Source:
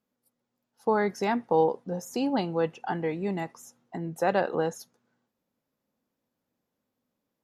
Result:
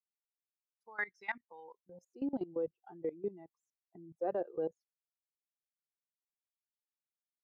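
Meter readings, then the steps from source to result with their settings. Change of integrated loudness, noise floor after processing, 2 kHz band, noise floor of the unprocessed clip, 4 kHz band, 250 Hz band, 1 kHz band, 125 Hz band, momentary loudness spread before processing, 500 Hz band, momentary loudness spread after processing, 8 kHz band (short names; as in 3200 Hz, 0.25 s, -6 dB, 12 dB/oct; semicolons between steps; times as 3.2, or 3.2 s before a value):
-11.0 dB, under -85 dBFS, -6.5 dB, -84 dBFS, under -20 dB, -12.5 dB, -18.0 dB, -21.5 dB, 12 LU, -12.0 dB, 20 LU, under -30 dB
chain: per-bin expansion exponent 2; band-pass sweep 2000 Hz -> 430 Hz, 1.61–2.15; level quantiser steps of 19 dB; gain +5 dB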